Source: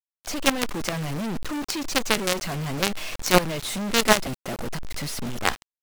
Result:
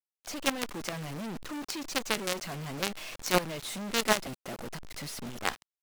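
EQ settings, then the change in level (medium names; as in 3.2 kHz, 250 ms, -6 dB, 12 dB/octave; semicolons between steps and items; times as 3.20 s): bass shelf 100 Hz -7.5 dB; -7.5 dB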